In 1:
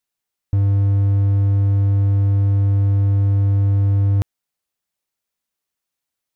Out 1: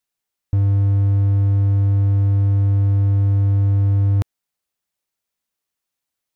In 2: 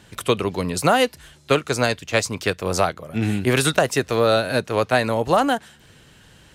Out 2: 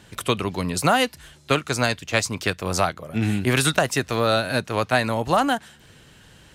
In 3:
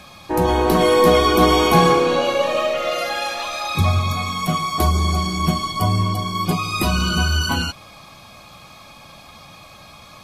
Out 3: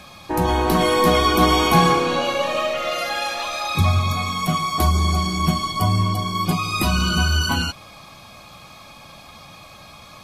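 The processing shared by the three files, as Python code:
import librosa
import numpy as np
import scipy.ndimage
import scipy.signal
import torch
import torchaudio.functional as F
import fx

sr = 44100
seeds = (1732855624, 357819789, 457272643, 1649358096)

y = fx.dynamic_eq(x, sr, hz=460.0, q=1.7, threshold_db=-31.0, ratio=4.0, max_db=-6)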